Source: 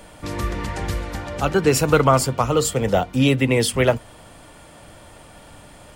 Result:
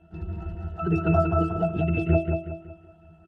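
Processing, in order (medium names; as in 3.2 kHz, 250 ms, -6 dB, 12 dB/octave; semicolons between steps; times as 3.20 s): random holes in the spectrogram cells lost 23%; doubling 16 ms -13.5 dB; granular stretch 0.55×, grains 37 ms; in parallel at +2.5 dB: level held to a coarse grid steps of 21 dB; on the sum: harmony voices -7 st -10 dB, +5 st -16 dB; pitch-class resonator E, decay 0.29 s; de-hum 62.85 Hz, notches 11; on a send: feedback delay 185 ms, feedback 37%, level -5 dB; on the sum: trim +5 dB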